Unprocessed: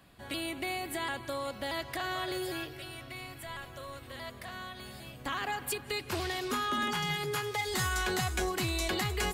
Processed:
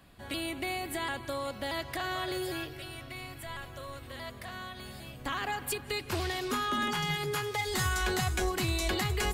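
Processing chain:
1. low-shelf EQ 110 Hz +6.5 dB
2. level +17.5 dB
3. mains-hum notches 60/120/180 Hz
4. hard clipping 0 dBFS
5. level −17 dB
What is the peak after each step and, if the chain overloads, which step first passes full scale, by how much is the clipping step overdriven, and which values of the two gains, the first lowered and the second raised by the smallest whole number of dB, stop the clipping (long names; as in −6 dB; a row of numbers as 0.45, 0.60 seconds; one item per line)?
−20.0, −2.5, −2.5, −2.5, −19.5 dBFS
no step passes full scale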